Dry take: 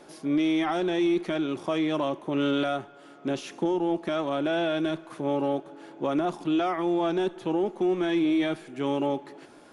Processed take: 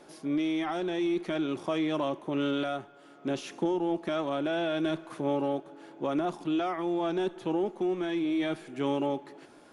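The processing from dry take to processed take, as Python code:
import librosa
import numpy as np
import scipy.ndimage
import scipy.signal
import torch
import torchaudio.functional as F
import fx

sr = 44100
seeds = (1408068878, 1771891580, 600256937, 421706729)

y = fx.rider(x, sr, range_db=10, speed_s=0.5)
y = y * librosa.db_to_amplitude(-3.0)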